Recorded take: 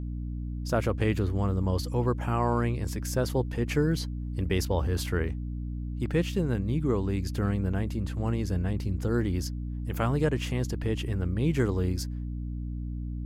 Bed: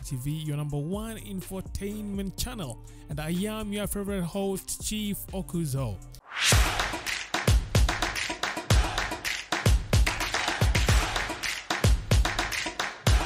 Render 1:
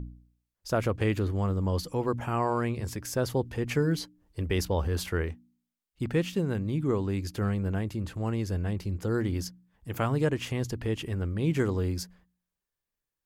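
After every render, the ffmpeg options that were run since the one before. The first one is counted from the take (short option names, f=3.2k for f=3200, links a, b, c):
-af "bandreject=f=60:t=h:w=4,bandreject=f=120:t=h:w=4,bandreject=f=180:t=h:w=4,bandreject=f=240:t=h:w=4,bandreject=f=300:t=h:w=4"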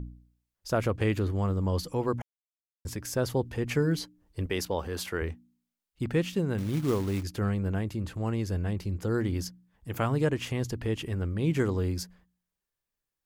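-filter_complex "[0:a]asettb=1/sr,asplit=3[a][b][c];[a]atrim=end=4.464[d];[b]atrim=start=4.46:end=5.22,asetpts=PTS-STARTPTS,afade=t=in:d=0.004:c=qsin,afade=t=out:st=0.756:d=0.004:c=qsin,highpass=f=260:p=1[e];[c]atrim=start=5.216[f];[d][e]acrossfade=d=0.004:c1=hsin:c2=qsin[g];[g][f]acrossfade=d=0.004:c1=qsin:c2=hsin,asettb=1/sr,asplit=3[h][i][j];[h]atrim=end=6.584[k];[i]atrim=start=6.58:end=7.23,asetpts=PTS-STARTPTS,afade=t=in:d=0.004:c=qsin,afade=t=out:st=0.646:d=0.004:c=qsin,acrusher=bits=4:mode=log:mix=0:aa=0.000001[l];[j]atrim=start=7.226[m];[k][l]acrossfade=d=0.004:c1=hsin:c2=qsin[n];[n][m]acrossfade=d=0.004:c1=qsin:c2=hsin,asplit=3[o][p][q];[o]atrim=end=2.22,asetpts=PTS-STARTPTS,afade=t=out:st=2.216:d=0.004:c=hsin[r];[p]atrim=start=2.22:end=2.85,asetpts=PTS-STARTPTS,volume=0[s];[q]atrim=start=2.85,asetpts=PTS-STARTPTS,afade=t=in:d=0.004:c=hsin[t];[r][s][t]concat=n=3:v=0:a=1"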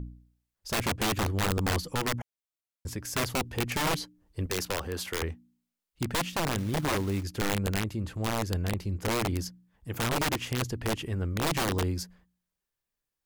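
-af "aeval=exprs='(mod(13.3*val(0)+1,2)-1)/13.3':c=same"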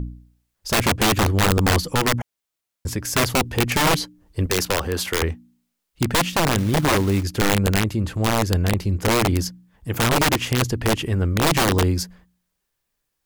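-af "volume=10dB"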